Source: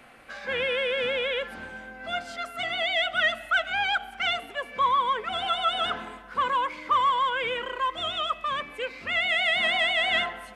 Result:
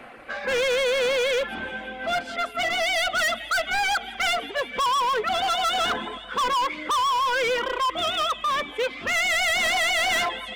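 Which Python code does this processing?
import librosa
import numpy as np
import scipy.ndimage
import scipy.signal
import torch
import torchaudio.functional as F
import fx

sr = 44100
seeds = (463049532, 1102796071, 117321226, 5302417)

p1 = fx.bass_treble(x, sr, bass_db=-12, treble_db=-8)
p2 = fx.dereverb_blind(p1, sr, rt60_s=0.55)
p3 = fx.low_shelf(p2, sr, hz=470.0, db=9.5)
p4 = p3 + fx.echo_wet_highpass(p3, sr, ms=170, feedback_pct=81, hz=4000.0, wet_db=-12.0, dry=0)
p5 = np.clip(p4, -10.0 ** (-28.5 / 20.0), 10.0 ** (-28.5 / 20.0))
y = p5 * 10.0 ** (7.5 / 20.0)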